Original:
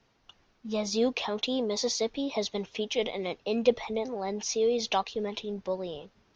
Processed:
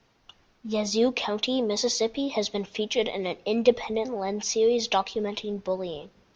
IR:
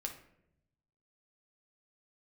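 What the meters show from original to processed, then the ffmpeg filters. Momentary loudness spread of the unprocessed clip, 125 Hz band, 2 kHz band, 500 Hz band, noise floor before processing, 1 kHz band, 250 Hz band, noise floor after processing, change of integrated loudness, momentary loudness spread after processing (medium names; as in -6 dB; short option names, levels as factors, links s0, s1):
8 LU, +3.5 dB, +3.5 dB, +3.5 dB, -68 dBFS, +3.5 dB, +3.5 dB, -65 dBFS, +3.5 dB, 8 LU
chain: -filter_complex "[0:a]asplit=2[s0][s1];[1:a]atrim=start_sample=2205[s2];[s1][s2]afir=irnorm=-1:irlink=0,volume=0.178[s3];[s0][s3]amix=inputs=2:normalize=0,volume=1.33"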